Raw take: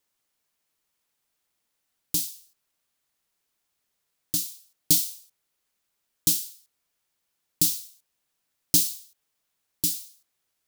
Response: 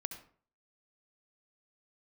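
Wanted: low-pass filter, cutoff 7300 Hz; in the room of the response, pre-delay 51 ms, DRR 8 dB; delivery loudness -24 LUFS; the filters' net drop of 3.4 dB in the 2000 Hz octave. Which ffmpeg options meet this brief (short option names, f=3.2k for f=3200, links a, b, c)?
-filter_complex "[0:a]lowpass=7.3k,equalizer=f=2k:t=o:g=-5,asplit=2[a][b];[1:a]atrim=start_sample=2205,adelay=51[c];[b][c]afir=irnorm=-1:irlink=0,volume=-7dB[d];[a][d]amix=inputs=2:normalize=0,volume=7dB"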